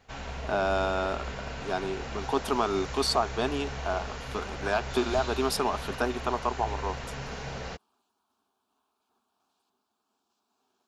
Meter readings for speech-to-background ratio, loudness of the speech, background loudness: 7.5 dB, −30.0 LKFS, −37.5 LKFS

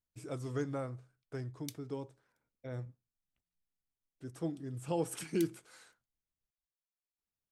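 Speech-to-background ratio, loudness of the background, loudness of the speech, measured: 12.0 dB, −51.5 LKFS, −39.5 LKFS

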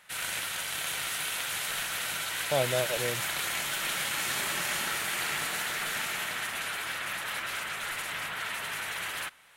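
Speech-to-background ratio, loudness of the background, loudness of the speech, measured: −0.5 dB, −31.0 LKFS, −31.5 LKFS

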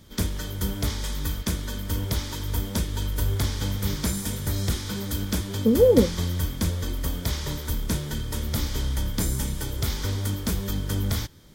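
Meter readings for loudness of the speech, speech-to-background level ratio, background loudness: −20.5 LKFS, 8.0 dB, −28.5 LKFS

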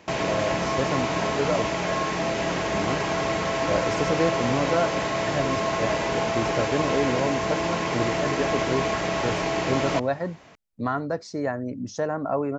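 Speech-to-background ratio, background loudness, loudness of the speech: −4.0 dB, −25.5 LKFS, −29.5 LKFS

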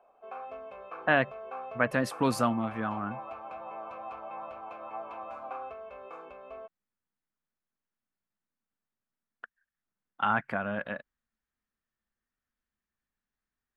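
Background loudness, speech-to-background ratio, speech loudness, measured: −42.5 LKFS, 12.5 dB, −30.0 LKFS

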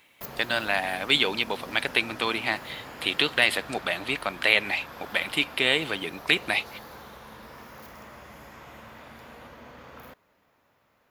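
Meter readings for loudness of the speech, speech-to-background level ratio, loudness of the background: −25.5 LKFS, 17.5 dB, −43.0 LKFS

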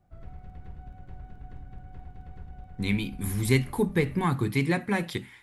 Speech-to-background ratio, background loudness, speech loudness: 19.5 dB, −47.0 LKFS, −27.5 LKFS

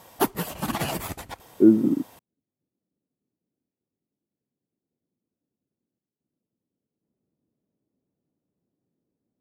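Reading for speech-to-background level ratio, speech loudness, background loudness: 9.0 dB, −20.5 LKFS, −29.5 LKFS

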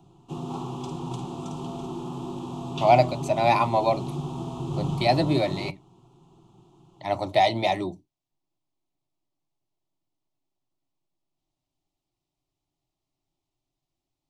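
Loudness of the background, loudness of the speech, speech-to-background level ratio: −33.5 LKFS, −23.5 LKFS, 10.0 dB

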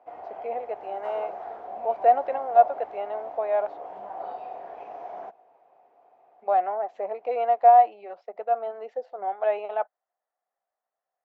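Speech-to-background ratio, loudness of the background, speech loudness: 13.0 dB, −38.0 LKFS, −25.0 LKFS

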